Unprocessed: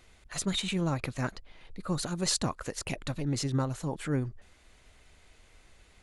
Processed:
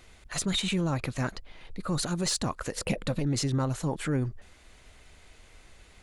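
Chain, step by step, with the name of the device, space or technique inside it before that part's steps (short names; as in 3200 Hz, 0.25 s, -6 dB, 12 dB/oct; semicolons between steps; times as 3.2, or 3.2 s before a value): soft clipper into limiter (soft clip -17.5 dBFS, distortion -26 dB; limiter -24.5 dBFS, peak gain reduction 5.5 dB); 2.73–3.19 thirty-one-band EQ 200 Hz +11 dB, 500 Hz +12 dB, 6300 Hz -5 dB; gain +4.5 dB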